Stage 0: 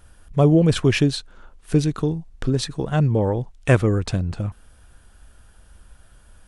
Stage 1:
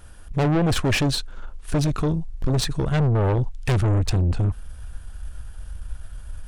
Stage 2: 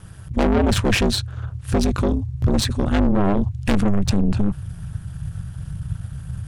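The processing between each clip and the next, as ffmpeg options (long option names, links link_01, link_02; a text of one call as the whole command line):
ffmpeg -i in.wav -af "asubboost=boost=3.5:cutoff=130,aeval=exprs='(tanh(14.1*val(0)+0.35)-tanh(0.35))/14.1':channel_layout=same,volume=5.5dB" out.wav
ffmpeg -i in.wav -af "aeval=exprs='val(0)*sin(2*PI*100*n/s)':channel_layout=same,volume=5.5dB" out.wav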